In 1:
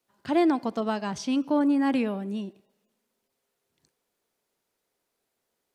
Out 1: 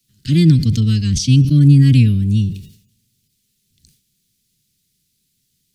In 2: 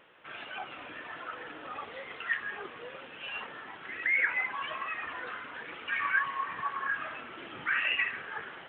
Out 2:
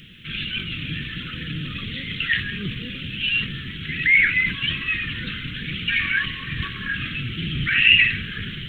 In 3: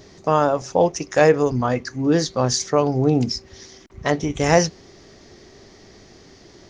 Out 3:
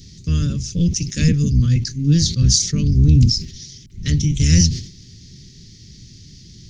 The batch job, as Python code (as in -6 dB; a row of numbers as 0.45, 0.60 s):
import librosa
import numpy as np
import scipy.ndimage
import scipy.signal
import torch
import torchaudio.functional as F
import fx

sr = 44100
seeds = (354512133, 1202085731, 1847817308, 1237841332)

y = fx.octave_divider(x, sr, octaves=1, level_db=1.0)
y = scipy.signal.sosfilt(scipy.signal.cheby1(2, 1.0, [160.0, 3900.0], 'bandstop', fs=sr, output='sos'), y)
y = fx.sustainer(y, sr, db_per_s=110.0)
y = librosa.util.normalize(y) * 10.0 ** (-1.5 / 20.0)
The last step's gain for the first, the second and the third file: +16.0, +24.0, +6.5 dB